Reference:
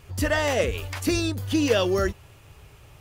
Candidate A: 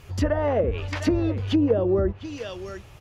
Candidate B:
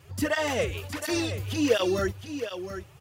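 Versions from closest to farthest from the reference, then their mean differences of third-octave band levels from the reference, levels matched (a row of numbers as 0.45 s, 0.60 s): B, A; 4.5 dB, 8.5 dB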